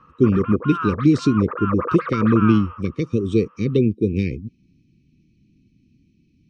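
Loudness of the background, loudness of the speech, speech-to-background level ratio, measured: −28.5 LKFS, −20.0 LKFS, 8.5 dB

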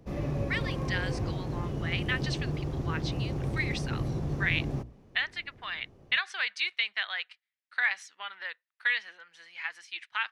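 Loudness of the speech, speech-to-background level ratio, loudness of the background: −33.0 LKFS, 0.5 dB, −33.5 LKFS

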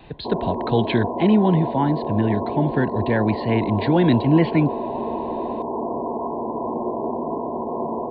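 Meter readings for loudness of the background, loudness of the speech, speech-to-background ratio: −27.0 LKFS, −21.0 LKFS, 6.0 dB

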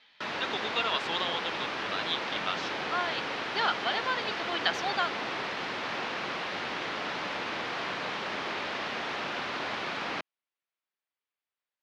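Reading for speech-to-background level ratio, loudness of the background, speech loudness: 0.5 dB, −33.5 LKFS, −33.0 LKFS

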